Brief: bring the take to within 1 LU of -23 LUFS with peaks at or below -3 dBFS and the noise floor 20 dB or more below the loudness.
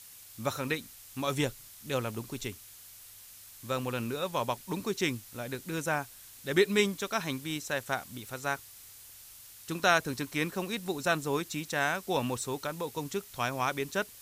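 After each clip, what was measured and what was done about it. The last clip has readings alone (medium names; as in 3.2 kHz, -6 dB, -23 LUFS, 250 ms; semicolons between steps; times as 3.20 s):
noise floor -51 dBFS; noise floor target -53 dBFS; loudness -32.5 LUFS; peak level -10.5 dBFS; loudness target -23.0 LUFS
-> noise reduction 6 dB, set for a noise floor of -51 dBFS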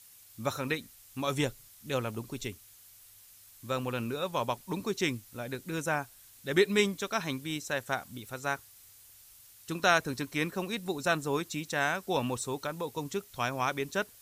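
noise floor -56 dBFS; loudness -32.5 LUFS; peak level -10.5 dBFS; loudness target -23.0 LUFS
-> trim +9.5 dB; peak limiter -3 dBFS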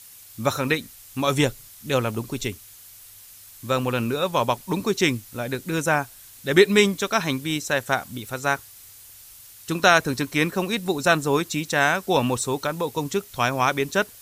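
loudness -23.0 LUFS; peak level -3.0 dBFS; noise floor -47 dBFS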